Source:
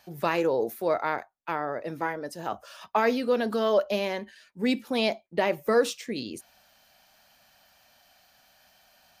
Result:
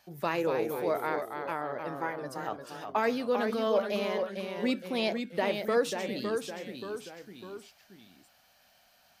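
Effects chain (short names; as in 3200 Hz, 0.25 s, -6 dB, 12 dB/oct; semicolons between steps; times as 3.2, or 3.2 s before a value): echoes that change speed 0.221 s, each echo -1 st, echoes 3, each echo -6 dB; gain -4.5 dB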